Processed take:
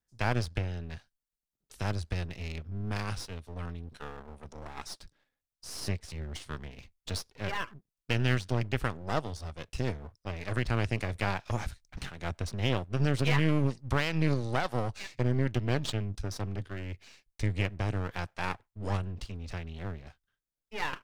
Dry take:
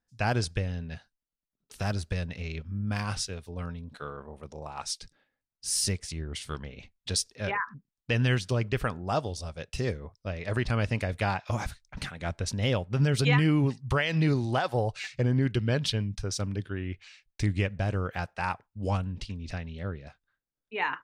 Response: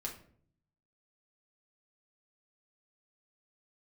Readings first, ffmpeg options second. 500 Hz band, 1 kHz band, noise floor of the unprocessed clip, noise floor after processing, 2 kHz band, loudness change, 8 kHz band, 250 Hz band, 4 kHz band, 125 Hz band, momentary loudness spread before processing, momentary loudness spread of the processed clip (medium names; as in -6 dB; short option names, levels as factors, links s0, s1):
-3.5 dB, -3.0 dB, under -85 dBFS, under -85 dBFS, -3.0 dB, -3.5 dB, -11.0 dB, -3.5 dB, -4.5 dB, -3.0 dB, 13 LU, 15 LU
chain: -filter_complex "[0:a]acrossover=split=110|5200[s0][s1][s2];[s1]aeval=exprs='max(val(0),0)':c=same[s3];[s2]acompressor=threshold=0.00224:ratio=6[s4];[s0][s3][s4]amix=inputs=3:normalize=0"